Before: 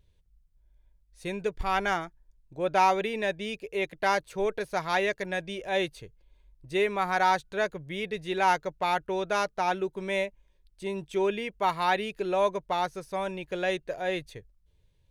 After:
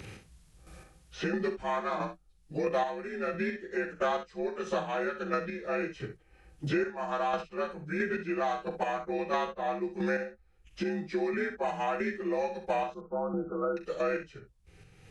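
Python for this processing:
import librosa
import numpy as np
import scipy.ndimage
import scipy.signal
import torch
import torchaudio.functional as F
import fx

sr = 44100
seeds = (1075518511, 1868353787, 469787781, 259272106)

y = fx.partial_stretch(x, sr, pct=86)
y = fx.chopper(y, sr, hz=1.5, depth_pct=60, duty_pct=25)
y = fx.brickwall_lowpass(y, sr, high_hz=1500.0, at=(12.94, 13.77))
y = fx.room_early_taps(y, sr, ms=(40, 64), db=(-11.0, -12.0))
y = fx.band_squash(y, sr, depth_pct=100)
y = y * 10.0 ** (2.0 / 20.0)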